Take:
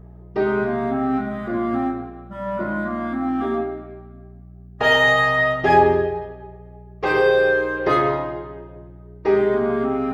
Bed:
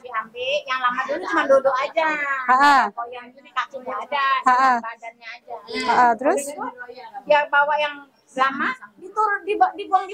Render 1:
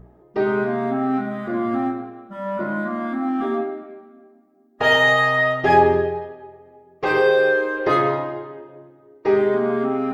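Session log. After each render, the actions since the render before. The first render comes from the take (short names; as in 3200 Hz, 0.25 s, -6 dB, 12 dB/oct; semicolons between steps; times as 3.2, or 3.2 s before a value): de-hum 60 Hz, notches 3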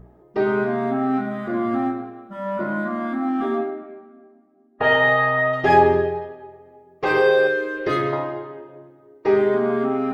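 3.7–5.52 LPF 3400 Hz -> 1900 Hz; 7.47–8.13 bell 850 Hz -12 dB 1 oct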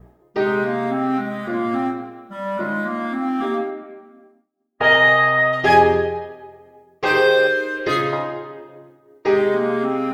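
high shelf 2000 Hz +10 dB; expander -46 dBFS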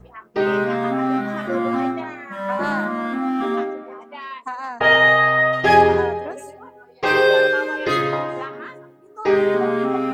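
add bed -14 dB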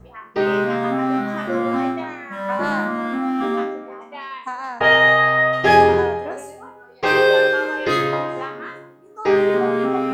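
spectral trails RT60 0.46 s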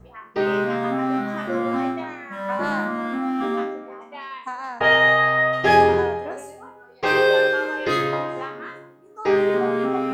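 gain -2.5 dB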